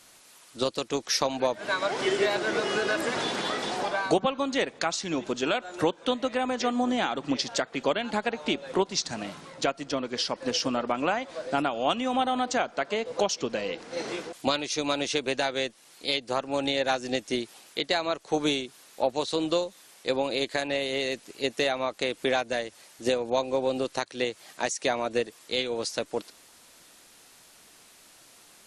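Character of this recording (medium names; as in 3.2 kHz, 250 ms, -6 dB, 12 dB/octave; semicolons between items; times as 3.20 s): noise floor -55 dBFS; spectral tilt -3.0 dB/octave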